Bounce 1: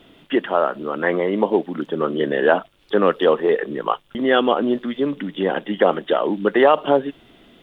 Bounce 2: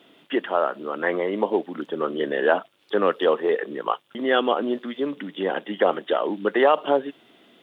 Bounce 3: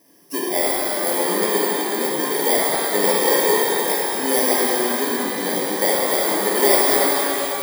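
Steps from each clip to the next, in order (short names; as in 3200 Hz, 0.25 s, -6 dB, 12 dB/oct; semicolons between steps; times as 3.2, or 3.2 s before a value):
Bessel high-pass 270 Hz, order 2; gain -3 dB
FFT order left unsorted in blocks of 32 samples; shimmer reverb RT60 3.6 s, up +12 st, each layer -8 dB, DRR -6 dB; gain -3 dB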